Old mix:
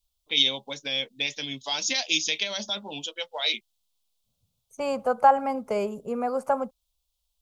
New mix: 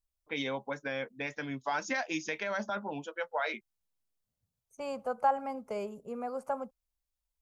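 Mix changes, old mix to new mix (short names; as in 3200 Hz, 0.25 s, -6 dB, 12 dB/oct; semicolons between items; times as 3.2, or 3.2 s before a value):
first voice: add resonant high shelf 2300 Hz -14 dB, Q 3; second voice -9.5 dB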